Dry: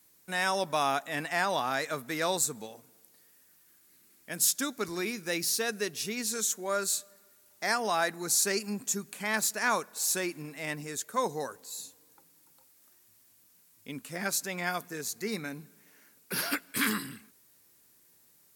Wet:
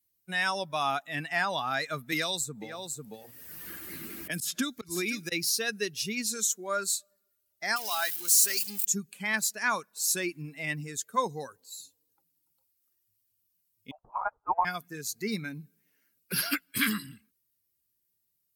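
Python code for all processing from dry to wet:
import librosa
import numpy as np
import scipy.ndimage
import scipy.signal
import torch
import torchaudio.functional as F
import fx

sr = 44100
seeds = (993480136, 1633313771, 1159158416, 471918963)

y = fx.chain(x, sr, fx.echo_single(ms=497, db=-12.0),
    fx.auto_swell(attack_ms=189.0),
    fx.band_squash(depth_pct=100), at=(2.12, 5.32))
y = fx.chain(y, sr, fx.crossing_spikes(level_db=-21.0),
    fx.low_shelf(hz=430.0, db=-11.5), at=(7.76, 8.85))
y = fx.chain(y, sr, fx.highpass_res(hz=2100.0, q=8.1),
    fx.freq_invert(carrier_hz=3000),
    fx.upward_expand(threshold_db=-38.0, expansion=1.5), at=(13.91, 14.65))
y = fx.bin_expand(y, sr, power=1.5)
y = fx.rider(y, sr, range_db=3, speed_s=0.5)
y = fx.dynamic_eq(y, sr, hz=500.0, q=0.8, threshold_db=-48.0, ratio=4.0, max_db=-6)
y = y * 10.0 ** (5.0 / 20.0)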